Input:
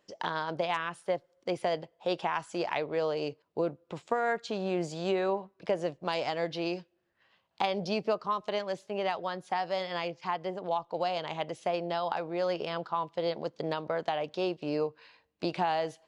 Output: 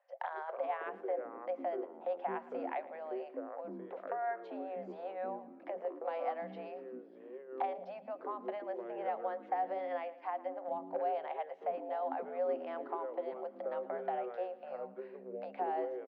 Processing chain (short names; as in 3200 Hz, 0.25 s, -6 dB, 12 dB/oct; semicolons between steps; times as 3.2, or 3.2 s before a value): LPF 1000 Hz 12 dB/oct; compressor, threshold -35 dBFS, peak gain reduction 10.5 dB; rippled Chebyshev high-pass 520 Hz, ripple 9 dB; feedback echo 0.113 s, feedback 49%, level -18 dB; echoes that change speed 0.193 s, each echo -6 st, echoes 3, each echo -6 dB; gain +6.5 dB